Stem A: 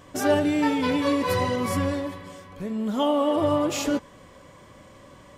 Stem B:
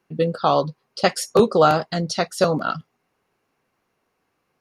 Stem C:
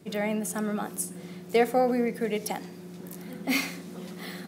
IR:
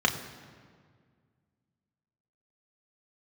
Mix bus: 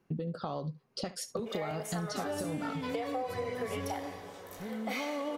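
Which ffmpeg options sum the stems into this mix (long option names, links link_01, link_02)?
-filter_complex "[0:a]adelay=2000,volume=-10dB[link_01];[1:a]lowshelf=frequency=410:gain=11.5,acompressor=threshold=-15dB:ratio=6,alimiter=limit=-16dB:level=0:latency=1:release=472,volume=-5.5dB,asplit=2[link_02][link_03];[link_03]volume=-19dB[link_04];[2:a]highpass=frequency=450:width=0.5412,highpass=frequency=450:width=1.3066,acompressor=threshold=-30dB:ratio=4,adelay=1400,volume=-4.5dB,asplit=2[link_05][link_06];[link_06]volume=-7.5dB[link_07];[3:a]atrim=start_sample=2205[link_08];[link_07][link_08]afir=irnorm=-1:irlink=0[link_09];[link_04]aecho=0:1:71:1[link_10];[link_01][link_02][link_05][link_09][link_10]amix=inputs=5:normalize=0,acompressor=threshold=-32dB:ratio=6"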